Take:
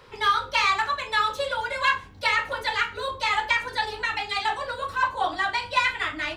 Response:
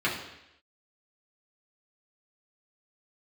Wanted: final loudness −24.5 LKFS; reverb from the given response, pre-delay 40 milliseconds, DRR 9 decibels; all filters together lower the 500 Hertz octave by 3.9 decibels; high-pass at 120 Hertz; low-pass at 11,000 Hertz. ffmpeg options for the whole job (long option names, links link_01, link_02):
-filter_complex "[0:a]highpass=120,lowpass=11000,equalizer=frequency=500:width_type=o:gain=-4.5,asplit=2[link_01][link_02];[1:a]atrim=start_sample=2205,adelay=40[link_03];[link_02][link_03]afir=irnorm=-1:irlink=0,volume=-21dB[link_04];[link_01][link_04]amix=inputs=2:normalize=0,volume=0.5dB"